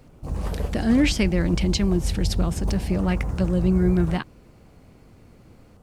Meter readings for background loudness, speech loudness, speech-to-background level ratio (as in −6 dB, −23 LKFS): −29.5 LKFS, −23.5 LKFS, 6.0 dB